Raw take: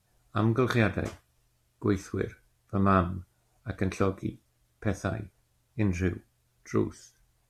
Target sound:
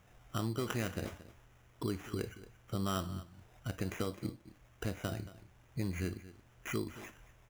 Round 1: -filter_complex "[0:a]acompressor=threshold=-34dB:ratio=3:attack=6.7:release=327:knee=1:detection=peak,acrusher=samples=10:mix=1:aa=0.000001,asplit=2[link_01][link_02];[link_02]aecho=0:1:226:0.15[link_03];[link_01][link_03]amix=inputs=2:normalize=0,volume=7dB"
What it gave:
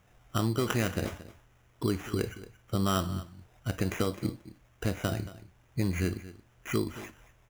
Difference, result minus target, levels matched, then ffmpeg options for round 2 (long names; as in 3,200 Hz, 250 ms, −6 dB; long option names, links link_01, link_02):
downward compressor: peak gain reduction −7.5 dB
-filter_complex "[0:a]acompressor=threshold=-45dB:ratio=3:attack=6.7:release=327:knee=1:detection=peak,acrusher=samples=10:mix=1:aa=0.000001,asplit=2[link_01][link_02];[link_02]aecho=0:1:226:0.15[link_03];[link_01][link_03]amix=inputs=2:normalize=0,volume=7dB"